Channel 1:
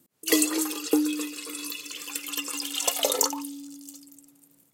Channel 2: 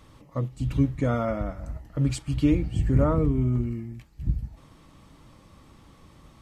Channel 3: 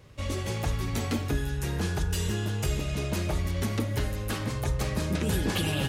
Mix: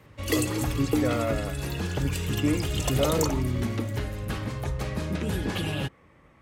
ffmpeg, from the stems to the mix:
-filter_complex "[0:a]volume=-3dB[a];[1:a]equalizer=f=500:t=o:w=1:g=7,equalizer=f=2k:t=o:w=1:g=12,equalizer=f=4k:t=o:w=1:g=-7,volume=-6.5dB[b];[2:a]volume=-1dB[c];[a][b][c]amix=inputs=3:normalize=0,highpass=47,bass=f=250:g=0,treble=f=4k:g=-6"

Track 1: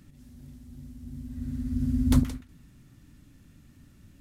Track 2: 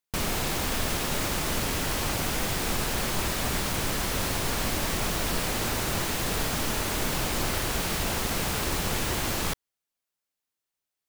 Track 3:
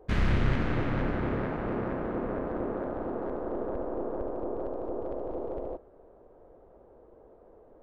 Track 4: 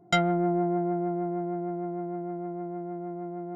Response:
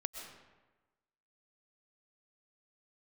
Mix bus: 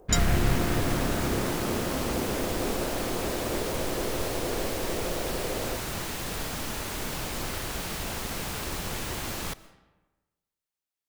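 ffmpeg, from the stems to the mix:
-filter_complex "[0:a]volume=-16.5dB[a];[1:a]volume=-7dB,asplit=2[b][c];[c]volume=-10.5dB[d];[2:a]volume=1dB[e];[3:a]aexciter=amount=14.3:drive=6.4:freq=4.3k,volume=-11.5dB[f];[4:a]atrim=start_sample=2205[g];[d][g]afir=irnorm=-1:irlink=0[h];[a][b][e][f][h]amix=inputs=5:normalize=0"

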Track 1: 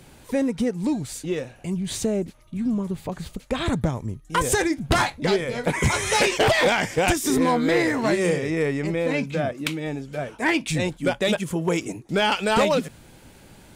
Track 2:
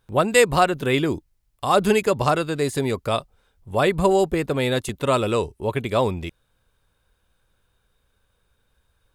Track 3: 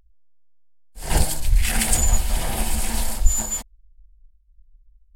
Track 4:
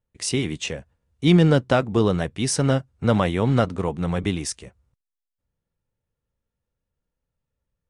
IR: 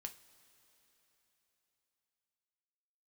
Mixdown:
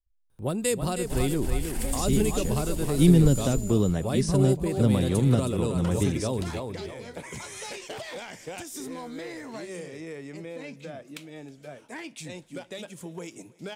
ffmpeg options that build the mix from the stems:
-filter_complex "[0:a]highpass=f=220:p=1,equalizer=f=4.7k:w=0.4:g=5.5,acompressor=threshold=-25dB:ratio=2.5,adelay=1500,volume=-12dB,asplit=3[a][b][c];[b]volume=-3.5dB[d];[c]volume=-21.5dB[e];[1:a]equalizer=f=9.5k:w=7.3:g=9,adelay=300,volume=-4.5dB,asplit=3[f][g][h];[g]volume=-11dB[i];[h]volume=-7dB[j];[2:a]agate=range=-33dB:threshold=-47dB:ratio=3:detection=peak,volume=-11.5dB,asplit=2[k][l];[l]volume=-4.5dB[m];[3:a]acrossover=split=4500[n][o];[o]acompressor=threshold=-33dB:ratio=4:attack=1:release=60[p];[n][p]amix=inputs=2:normalize=0,adelay=1750,volume=-0.5dB[q];[4:a]atrim=start_sample=2205[r];[d][i]amix=inputs=2:normalize=0[s];[s][r]afir=irnorm=-1:irlink=0[t];[e][j][m]amix=inputs=3:normalize=0,aecho=0:1:317|634|951|1268:1|0.3|0.09|0.027[u];[a][f][k][q][t][u]amix=inputs=6:normalize=0,equalizer=f=2.2k:w=0.38:g=-6.5,acrossover=split=390|3000[v][w][x];[w]acompressor=threshold=-33dB:ratio=6[y];[v][y][x]amix=inputs=3:normalize=0"

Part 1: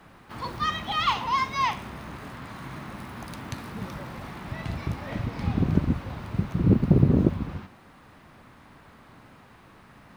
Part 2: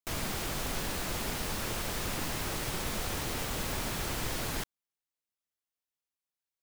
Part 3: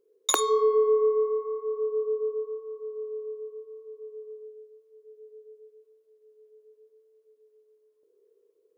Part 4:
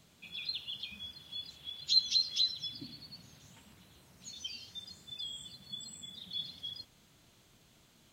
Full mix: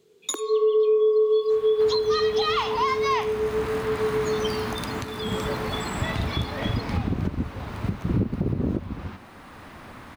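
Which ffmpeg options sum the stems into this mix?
-filter_complex "[0:a]equalizer=f=150:w=2.6:g=-5.5,adelay=1500,volume=-1.5dB[a];[2:a]lowshelf=f=460:t=q:w=1.5:g=10,volume=-1dB[b];[3:a]highpass=110,volume=-4dB[c];[a][b][c]amix=inputs=3:normalize=0,dynaudnorm=f=170:g=7:m=11dB,alimiter=limit=-14.5dB:level=0:latency=1:release=490"

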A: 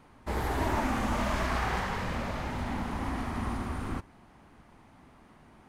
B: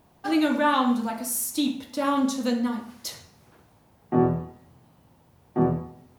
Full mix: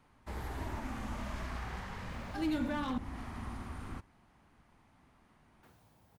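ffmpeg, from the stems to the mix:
-filter_complex "[0:a]volume=-7.5dB[a];[1:a]volume=18.5dB,asoftclip=hard,volume=-18.5dB,adelay=2100,volume=-5dB,asplit=3[b][c][d];[b]atrim=end=2.98,asetpts=PTS-STARTPTS,afade=t=out:st=2.976:d=0.004:c=hsin[e];[c]atrim=start=2.98:end=5.63,asetpts=PTS-STARTPTS,volume=0[f];[d]atrim=start=5.63,asetpts=PTS-STARTPTS,afade=t=in:d=0.004:c=hsin[g];[e][f][g]concat=n=3:v=0:a=1[h];[a][h]amix=inputs=2:normalize=0,equalizer=f=400:w=0.57:g=-4,acrossover=split=390[i][j];[j]acompressor=threshold=-46dB:ratio=2[k];[i][k]amix=inputs=2:normalize=0"

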